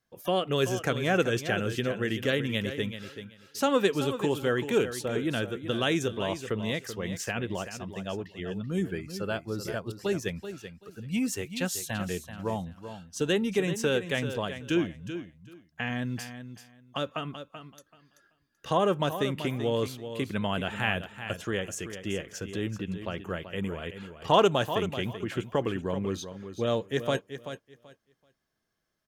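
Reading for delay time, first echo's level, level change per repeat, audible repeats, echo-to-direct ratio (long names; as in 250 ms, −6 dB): 383 ms, −10.5 dB, −14.5 dB, 2, −10.5 dB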